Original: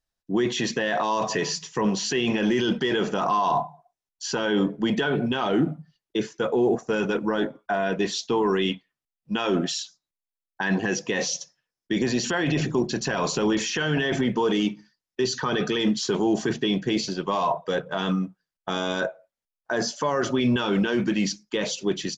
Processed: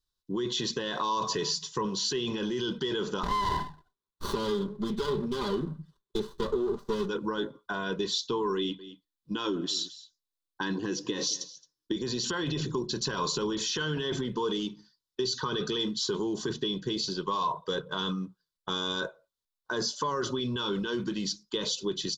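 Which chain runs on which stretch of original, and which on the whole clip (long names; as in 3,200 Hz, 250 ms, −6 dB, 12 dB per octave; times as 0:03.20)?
0:03.23–0:07.09: comb filter 5 ms, depth 99% + windowed peak hold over 17 samples
0:08.57–0:11.96: parametric band 300 Hz +14 dB 0.23 octaves + single-tap delay 219 ms −21.5 dB
whole clip: drawn EQ curve 410 Hz 0 dB, 660 Hz −13 dB, 1,100 Hz +3 dB, 2,300 Hz −12 dB, 3,700 Hz +8 dB, 6,000 Hz +1 dB; downward compressor, threshold −25 dBFS; comb filter 2 ms, depth 34%; level −2 dB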